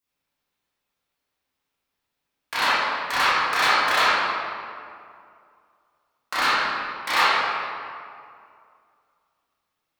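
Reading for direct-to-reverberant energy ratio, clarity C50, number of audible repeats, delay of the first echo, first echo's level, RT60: −13.0 dB, −5.0 dB, no echo audible, no echo audible, no echo audible, 2.4 s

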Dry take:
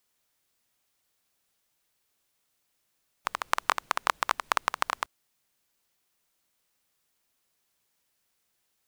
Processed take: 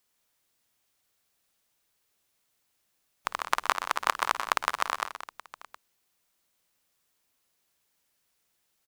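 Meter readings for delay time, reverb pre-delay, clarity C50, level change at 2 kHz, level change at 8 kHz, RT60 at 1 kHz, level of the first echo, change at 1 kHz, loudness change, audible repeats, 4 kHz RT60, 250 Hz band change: 54 ms, no reverb audible, no reverb audible, +0.5 dB, +0.5 dB, no reverb audible, −17.5 dB, +0.5 dB, +0.5 dB, 4, no reverb audible, +0.5 dB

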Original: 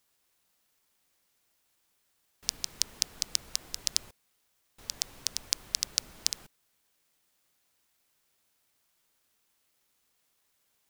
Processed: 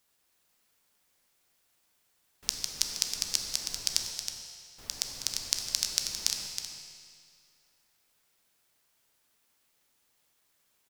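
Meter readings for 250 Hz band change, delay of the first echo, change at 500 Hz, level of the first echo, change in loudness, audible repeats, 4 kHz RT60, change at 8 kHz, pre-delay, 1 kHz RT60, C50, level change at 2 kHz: +1.5 dB, 319 ms, +2.0 dB, −8.0 dB, +1.0 dB, 1, 2.1 s, +2.0 dB, 13 ms, 2.2 s, 3.0 dB, +2.0 dB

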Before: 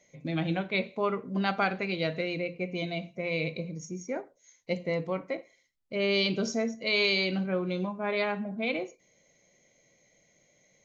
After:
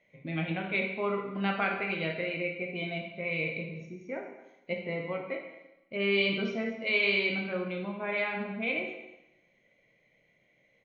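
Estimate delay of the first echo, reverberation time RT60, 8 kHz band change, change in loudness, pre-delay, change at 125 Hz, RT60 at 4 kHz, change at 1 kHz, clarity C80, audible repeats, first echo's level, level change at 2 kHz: 214 ms, 0.90 s, can't be measured, −1.0 dB, 7 ms, −3.5 dB, 0.90 s, −2.5 dB, 7.5 dB, 1, −18.5 dB, +2.0 dB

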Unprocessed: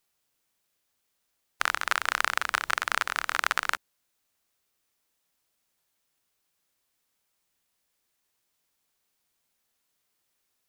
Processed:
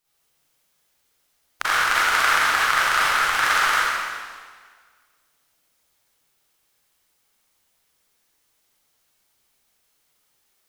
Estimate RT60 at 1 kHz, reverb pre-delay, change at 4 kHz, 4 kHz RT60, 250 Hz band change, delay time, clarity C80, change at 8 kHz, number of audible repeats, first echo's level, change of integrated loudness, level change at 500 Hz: 1.7 s, 32 ms, +9.0 dB, 1.6 s, +8.0 dB, no echo audible, −2.0 dB, +9.0 dB, no echo audible, no echo audible, +8.5 dB, +9.0 dB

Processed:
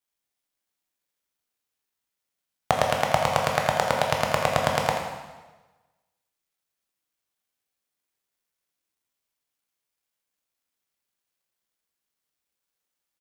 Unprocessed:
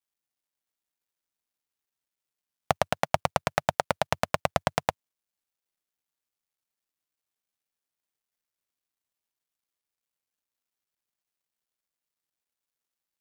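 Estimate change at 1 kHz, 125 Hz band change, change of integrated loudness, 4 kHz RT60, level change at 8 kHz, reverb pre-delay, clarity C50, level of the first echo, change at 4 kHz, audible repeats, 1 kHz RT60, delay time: +4.5 dB, +4.0 dB, +4.5 dB, 1.1 s, +4.5 dB, 8 ms, 3.0 dB, −9.5 dB, +5.5 dB, 1, 1.2 s, 83 ms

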